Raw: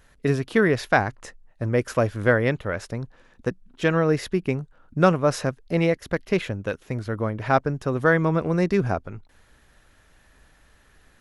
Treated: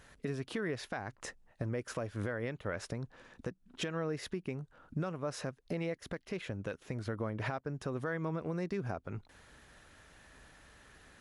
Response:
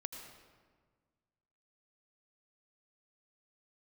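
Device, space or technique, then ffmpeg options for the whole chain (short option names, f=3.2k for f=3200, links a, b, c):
podcast mastering chain: -af "highpass=f=75:p=1,acompressor=threshold=-32dB:ratio=3,alimiter=level_in=3dB:limit=-24dB:level=0:latency=1:release=289,volume=-3dB,volume=1dB" -ar 24000 -c:a libmp3lame -b:a 112k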